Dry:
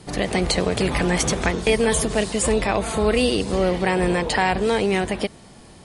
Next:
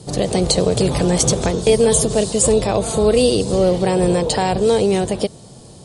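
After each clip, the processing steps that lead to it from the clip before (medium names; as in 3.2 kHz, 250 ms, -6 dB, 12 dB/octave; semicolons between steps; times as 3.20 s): graphic EQ 125/500/2000/4000/8000 Hz +11/+8/-9/+5/+9 dB; trim -1 dB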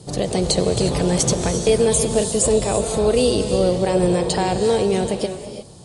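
gated-style reverb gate 380 ms rising, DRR 7.5 dB; trim -3 dB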